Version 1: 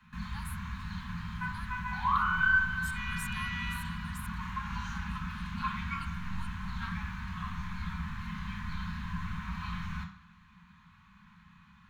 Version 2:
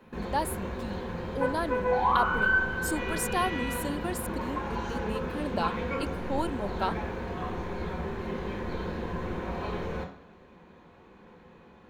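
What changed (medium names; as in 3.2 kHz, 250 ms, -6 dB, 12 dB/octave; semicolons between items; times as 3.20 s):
speech +11.0 dB; master: remove elliptic band-stop 190–1100 Hz, stop band 60 dB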